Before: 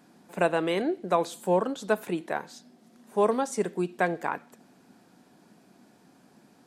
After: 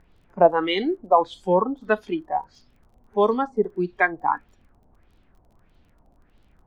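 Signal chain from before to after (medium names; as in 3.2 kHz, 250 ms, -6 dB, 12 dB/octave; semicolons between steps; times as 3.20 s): spectral noise reduction 17 dB; added noise brown -61 dBFS; LFO low-pass sine 1.6 Hz 750–3700 Hz; crackle 24 per s -56 dBFS; trim +4 dB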